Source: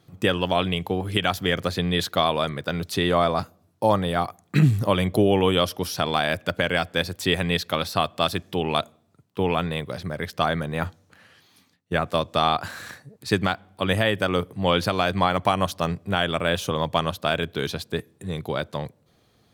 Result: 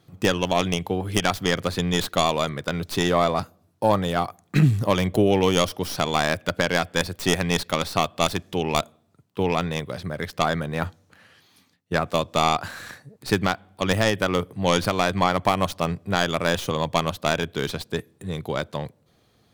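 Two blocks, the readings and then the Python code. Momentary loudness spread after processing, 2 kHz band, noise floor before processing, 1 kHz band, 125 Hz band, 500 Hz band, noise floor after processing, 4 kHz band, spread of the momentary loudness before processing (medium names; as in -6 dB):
10 LU, 0.0 dB, -63 dBFS, +0.5 dB, 0.0 dB, +0.5 dB, -63 dBFS, -1.0 dB, 10 LU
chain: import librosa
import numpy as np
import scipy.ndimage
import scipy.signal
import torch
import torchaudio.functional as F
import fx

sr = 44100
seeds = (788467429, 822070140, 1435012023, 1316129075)

y = fx.tracing_dist(x, sr, depth_ms=0.13)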